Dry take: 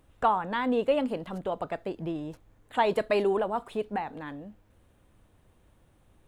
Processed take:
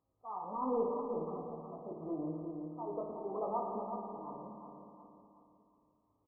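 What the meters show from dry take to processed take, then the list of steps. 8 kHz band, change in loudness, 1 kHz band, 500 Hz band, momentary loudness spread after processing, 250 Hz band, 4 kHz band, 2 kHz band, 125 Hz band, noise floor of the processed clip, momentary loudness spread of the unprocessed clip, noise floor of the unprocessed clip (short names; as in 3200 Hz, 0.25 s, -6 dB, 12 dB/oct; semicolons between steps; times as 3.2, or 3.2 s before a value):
n/a, -10.5 dB, -10.0 dB, -10.0 dB, 15 LU, -8.5 dB, under -40 dB, under -40 dB, -8.0 dB, -77 dBFS, 14 LU, -64 dBFS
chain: bin magnitudes rounded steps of 15 dB; gate -51 dBFS, range -13 dB; HPF 370 Hz 6 dB/oct; bell 520 Hz -4 dB 2.7 oct; auto swell 0.56 s; chorus 0.8 Hz, delay 18.5 ms, depth 4.3 ms; soft clip -29.5 dBFS, distortion -19 dB; brick-wall FIR low-pass 1300 Hz; doubler 19 ms -13 dB; feedback echo 0.366 s, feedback 46%, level -7 dB; spring tank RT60 2.1 s, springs 56 ms, chirp 70 ms, DRR 2.5 dB; gain +4.5 dB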